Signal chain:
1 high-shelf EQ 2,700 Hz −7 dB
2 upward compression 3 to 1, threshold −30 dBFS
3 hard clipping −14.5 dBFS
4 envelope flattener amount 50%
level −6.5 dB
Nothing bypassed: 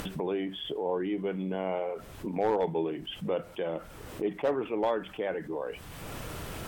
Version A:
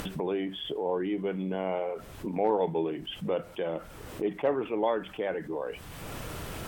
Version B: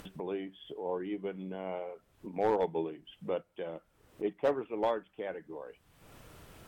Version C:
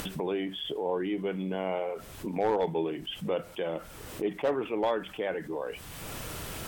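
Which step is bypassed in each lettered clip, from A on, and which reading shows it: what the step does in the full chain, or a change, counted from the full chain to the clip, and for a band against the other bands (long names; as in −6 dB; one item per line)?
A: 3, distortion level −19 dB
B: 4, change in momentary loudness spread +5 LU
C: 1, 4 kHz band +2.5 dB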